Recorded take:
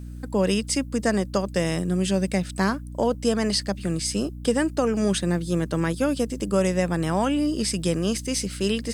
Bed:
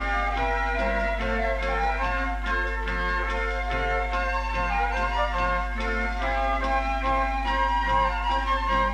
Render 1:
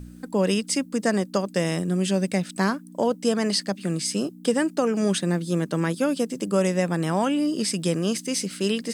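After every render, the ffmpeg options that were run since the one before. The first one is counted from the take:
-af "bandreject=f=60:t=h:w=4,bandreject=f=120:t=h:w=4"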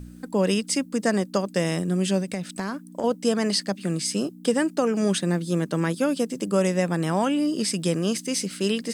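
-filter_complex "[0:a]asettb=1/sr,asplit=3[a][b][c];[a]atrim=end=2.204[d];[b]atrim=start=2.2:end=3.04,asetpts=PTS-STARTPTS,afade=t=in:d=0.004:c=qsin,afade=t=out:st=0.836:d=0.004:c=qsin,acompressor=threshold=-24dB:ratio=6:attack=3.2:release=140:knee=1:detection=peak[e];[c]atrim=start=3.036[f];[d][e]acrossfade=d=0.004:c1=hsin:c2=qsin[g];[g][f]acrossfade=d=0.004:c1=qsin:c2=hsin"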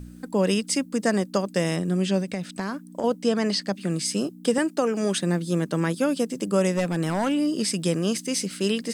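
-filter_complex "[0:a]asettb=1/sr,asplit=3[a][b][c];[a]atrim=end=1.764[d];[b]atrim=start=1.76:end=3.91,asetpts=PTS-STARTPTS,afade=t=in:d=0.004:c=qsin,afade=t=out:st=2.146:d=0.004:c=qsin,acrossover=split=6300[e][f];[f]acompressor=threshold=-48dB:ratio=4:attack=1:release=60[g];[e][g]amix=inputs=2:normalize=0[h];[c]atrim=start=3.906[i];[d][h]acrossfade=d=0.004:c1=hsin:c2=qsin[j];[j][i]acrossfade=d=0.004:c1=qsin:c2=hsin,asettb=1/sr,asplit=3[k][l][m];[k]atrim=end=4.584[n];[l]atrim=start=4.58:end=5.18,asetpts=PTS-STARTPTS,afade=t=in:d=0.004:c=qsin,afade=t=out:st=0.596:d=0.004:c=qsin,highpass=220[o];[m]atrim=start=5.176[p];[n][o]acrossfade=d=0.004:c1=hsin:c2=qsin[q];[q][p]acrossfade=d=0.004:c1=qsin:c2=hsin,asettb=1/sr,asplit=3[r][s][t];[r]atrim=end=6.734[u];[s]atrim=start=6.73:end=7.35,asetpts=PTS-STARTPTS,afade=t=in:d=0.004:c=qsin,afade=t=out:st=0.616:d=0.004:c=qsin,volume=18dB,asoftclip=hard,volume=-18dB[v];[t]atrim=start=7.346[w];[u][v]acrossfade=d=0.004:c1=hsin:c2=qsin[x];[x][w]acrossfade=d=0.004:c1=qsin:c2=hsin"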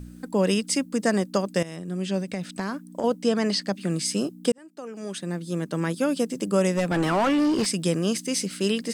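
-filter_complex "[0:a]asettb=1/sr,asplit=3[a][b][c];[a]atrim=end=6.914[d];[b]atrim=start=6.91:end=7.66,asetpts=PTS-STARTPTS,afade=t=in:d=0.004:c=qsin,afade=t=out:st=0.746:d=0.004:c=qsin,asplit=2[e][f];[f]highpass=f=720:p=1,volume=23dB,asoftclip=type=tanh:threshold=-14.5dB[g];[e][g]amix=inputs=2:normalize=0,lowpass=f=1.7k:p=1,volume=-6dB[h];[c]atrim=start=7.656[i];[d][h]acrossfade=d=0.004:c1=hsin:c2=qsin[j];[j][i]acrossfade=d=0.004:c1=qsin:c2=hsin,asplit=3[k][l][m];[k]atrim=end=1.63,asetpts=PTS-STARTPTS,afade=t=out:st=1.626:d=0.004:c=hsin:silence=0.16788[n];[l]atrim=start=1.63:end=4.52,asetpts=PTS-STARTPTS,afade=t=in:d=0.82:silence=0.16788,afade=t=out:st=2.886:d=0.004:c=hsin[o];[m]atrim=start=4.52,asetpts=PTS-STARTPTS,afade=t=in:d=1.68[p];[n][o][p]concat=n=3:v=0:a=1"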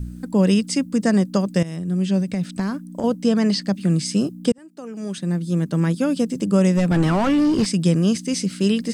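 -filter_complex "[0:a]bass=f=250:g=12,treble=f=4k:g=2,acrossover=split=8800[a][b];[b]acompressor=threshold=-51dB:ratio=4:attack=1:release=60[c];[a][c]amix=inputs=2:normalize=0"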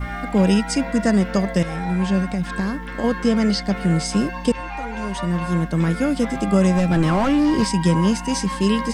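-filter_complex "[1:a]volume=-5dB[a];[0:a][a]amix=inputs=2:normalize=0"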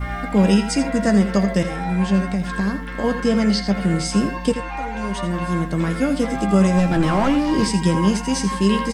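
-filter_complex "[0:a]asplit=2[a][b];[b]adelay=15,volume=-10.5dB[c];[a][c]amix=inputs=2:normalize=0,aecho=1:1:83:0.282"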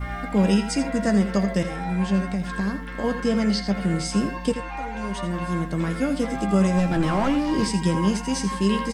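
-af "volume=-4dB"

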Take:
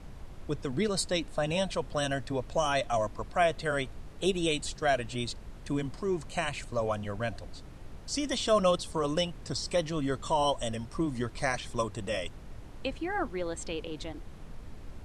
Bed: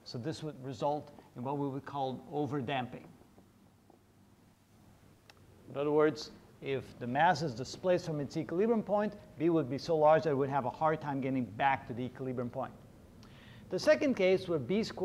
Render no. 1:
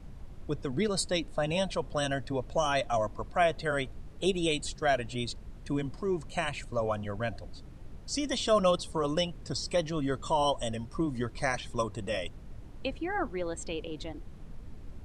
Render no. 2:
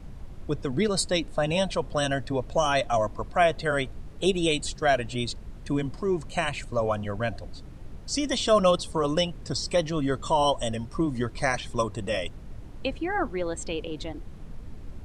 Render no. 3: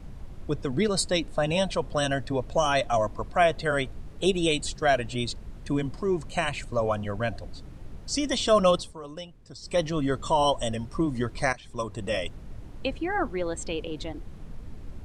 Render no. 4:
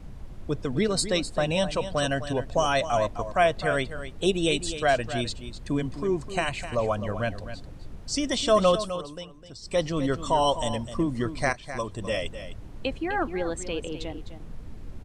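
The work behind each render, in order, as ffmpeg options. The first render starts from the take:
-af "afftdn=nr=6:nf=-47"
-af "volume=4.5dB"
-filter_complex "[0:a]asplit=4[a][b][c][d];[a]atrim=end=8.95,asetpts=PTS-STARTPTS,afade=t=out:st=8.76:d=0.19:silence=0.188365[e];[b]atrim=start=8.95:end=9.61,asetpts=PTS-STARTPTS,volume=-14.5dB[f];[c]atrim=start=9.61:end=11.53,asetpts=PTS-STARTPTS,afade=t=in:d=0.19:silence=0.188365,afade=t=out:st=1.916:d=0.004:c=hsin:silence=0.141254[g];[d]atrim=start=11.53,asetpts=PTS-STARTPTS,afade=t=in:d=0.58:silence=0.141254[h];[e][f][g][h]concat=n=4:v=0:a=1"
-af "aecho=1:1:256:0.266"

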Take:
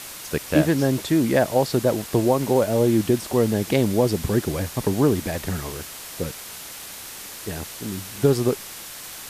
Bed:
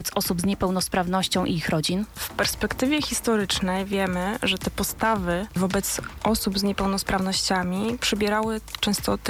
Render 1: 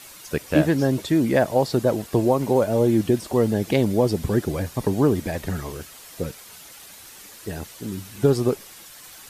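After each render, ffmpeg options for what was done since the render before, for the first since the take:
-af "afftdn=nr=9:nf=-38"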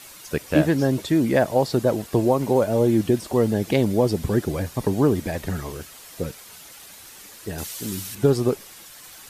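-filter_complex "[0:a]asettb=1/sr,asplit=3[a][b][c];[a]atrim=end=7.584[d];[b]atrim=start=7.58:end=8.15,asetpts=PTS-STARTPTS,afade=t=in:d=0.004:c=qsin,afade=t=out:st=0.566:d=0.004:c=qsin,highshelf=f=2.4k:g=10.5[e];[c]atrim=start=8.146[f];[d][e]acrossfade=d=0.004:c1=hsin:c2=qsin[g];[g][f]acrossfade=d=0.004:c1=qsin:c2=hsin"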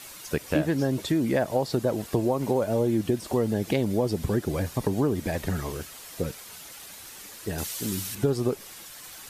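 -af "acompressor=threshold=-23dB:ratio=2.5"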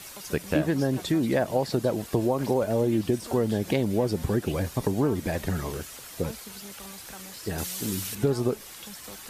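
-filter_complex "[1:a]volume=-22dB[a];[0:a][a]amix=inputs=2:normalize=0"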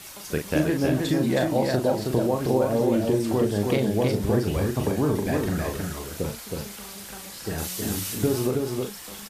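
-filter_complex "[0:a]asplit=2[a][b];[b]adelay=39,volume=-5.5dB[c];[a][c]amix=inputs=2:normalize=0,aecho=1:1:319:0.668"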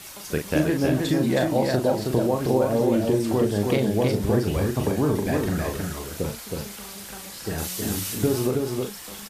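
-af "volume=1dB"

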